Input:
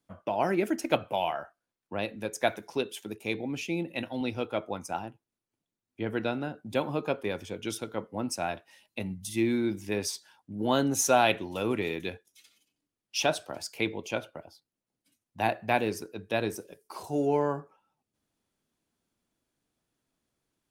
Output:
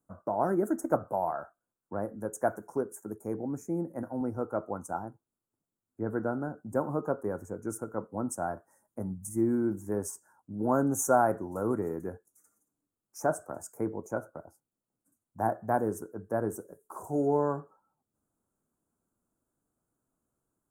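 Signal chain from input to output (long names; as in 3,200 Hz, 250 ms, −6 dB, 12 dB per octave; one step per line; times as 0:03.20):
elliptic band-stop filter 1,400–7,200 Hz, stop band 60 dB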